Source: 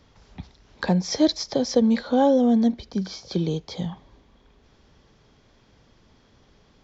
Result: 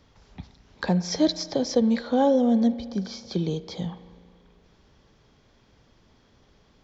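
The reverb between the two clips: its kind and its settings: spring tank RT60 2.1 s, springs 34 ms, chirp 30 ms, DRR 15 dB; trim -2 dB

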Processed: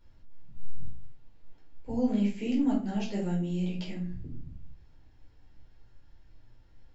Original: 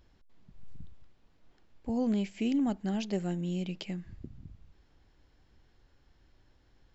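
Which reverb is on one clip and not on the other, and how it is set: simulated room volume 310 m³, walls furnished, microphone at 4.6 m; trim -8 dB

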